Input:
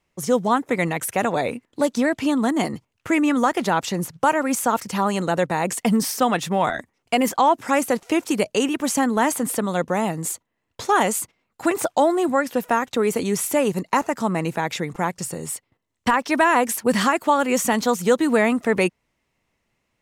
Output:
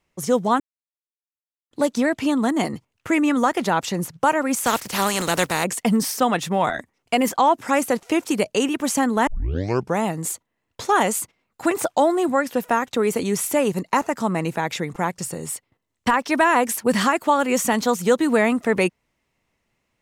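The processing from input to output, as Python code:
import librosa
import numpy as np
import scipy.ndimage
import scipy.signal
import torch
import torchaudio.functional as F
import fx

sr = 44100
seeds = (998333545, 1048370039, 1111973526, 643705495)

y = fx.spec_flatten(x, sr, power=0.53, at=(4.64, 5.63), fade=0.02)
y = fx.edit(y, sr, fx.silence(start_s=0.6, length_s=1.11),
    fx.tape_start(start_s=9.27, length_s=0.69), tone=tone)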